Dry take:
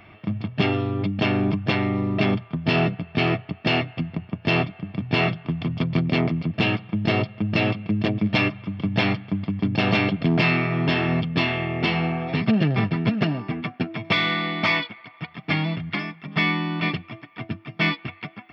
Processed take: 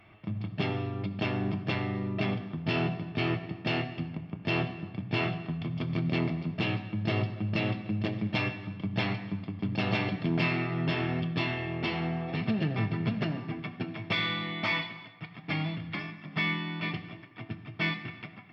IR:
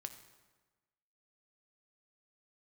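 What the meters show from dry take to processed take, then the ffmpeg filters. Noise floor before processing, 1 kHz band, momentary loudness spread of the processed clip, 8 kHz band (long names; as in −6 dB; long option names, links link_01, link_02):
−49 dBFS, −8.5 dB, 8 LU, can't be measured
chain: -filter_complex "[1:a]atrim=start_sample=2205,afade=type=out:start_time=0.41:duration=0.01,atrim=end_sample=18522,asetrate=40131,aresample=44100[link_01];[0:a][link_01]afir=irnorm=-1:irlink=0,volume=-5dB"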